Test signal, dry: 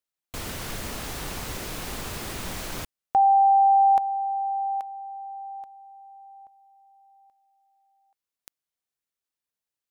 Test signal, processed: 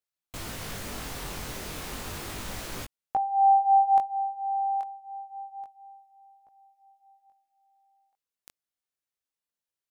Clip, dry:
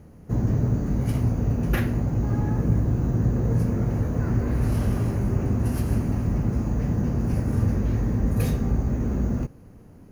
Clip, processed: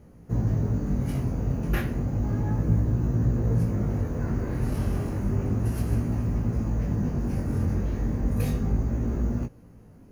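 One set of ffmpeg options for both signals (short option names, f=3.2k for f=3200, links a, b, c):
-af "flanger=delay=17:depth=5.9:speed=0.32"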